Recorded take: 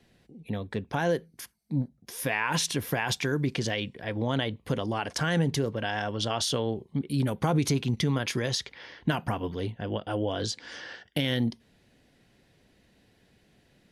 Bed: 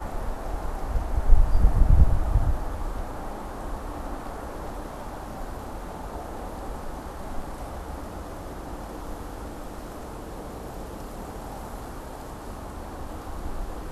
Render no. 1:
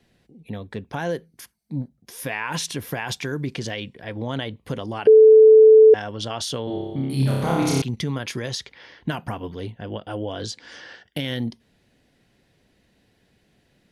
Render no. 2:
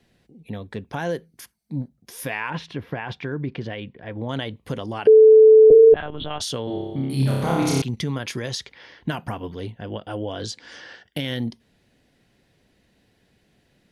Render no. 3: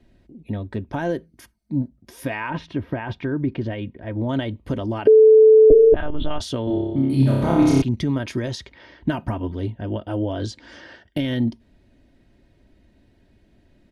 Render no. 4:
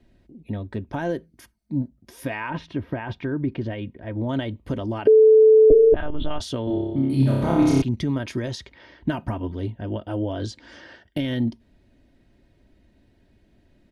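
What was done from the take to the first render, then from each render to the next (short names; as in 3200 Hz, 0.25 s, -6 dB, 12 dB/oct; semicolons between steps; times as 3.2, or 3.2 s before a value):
5.07–5.94 bleep 437 Hz -6.5 dBFS; 6.64–7.82 flutter echo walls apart 5.1 m, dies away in 1.4 s
2.5–4.29 air absorption 340 m; 5.7–6.4 monotone LPC vocoder at 8 kHz 150 Hz
tilt -2.5 dB/oct; comb 3.2 ms, depth 49%
gain -2 dB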